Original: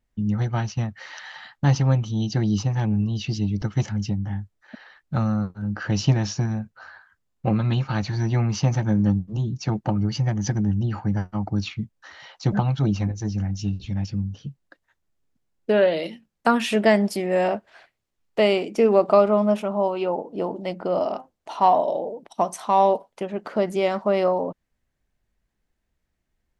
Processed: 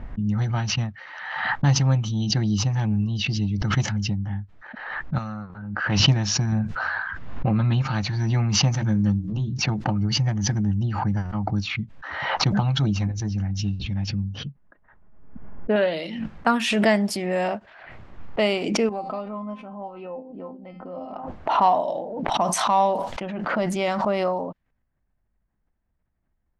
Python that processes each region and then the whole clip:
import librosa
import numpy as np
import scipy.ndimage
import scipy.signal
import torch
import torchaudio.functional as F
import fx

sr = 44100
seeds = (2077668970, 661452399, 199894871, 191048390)

y = fx.chain(x, sr, fx.clip_hard(threshold_db=-15.0),
    fx.low_shelf(hz=460.0, db=-11.5), at=(5.18, 6.0))
y = fx.chain(y, sr, fx.lowpass(hz=2800.0, slope=6),
    fx.env_flatten(amount_pct=70), at=(6.52, 7.82))
y = fx.chain(y, sr, fx.peak_eq(hz=770.0, db=-4.5, octaves=0.86),
    fx.hum_notches(base_hz=60, count=7), at=(8.75, 9.5))
y = fx.chain(y, sr, fx.lowpass(hz=1900.0, slope=12),
    fx.comb(ms=4.8, depth=0.33), at=(14.47, 15.76))
y = fx.chain(y, sr, fx.low_shelf(hz=420.0, db=7.5),
    fx.comb_fb(f0_hz=260.0, decay_s=0.27, harmonics='all', damping=0.0, mix_pct=90), at=(18.89, 21.16))
y = fx.chain(y, sr, fx.notch(hz=420.0, q=6.5),
    fx.sustainer(db_per_s=56.0), at=(21.86, 24.05))
y = fx.env_lowpass(y, sr, base_hz=1300.0, full_db=-17.0)
y = fx.peak_eq(y, sr, hz=430.0, db=-5.5, octaves=1.2)
y = fx.pre_swell(y, sr, db_per_s=44.0)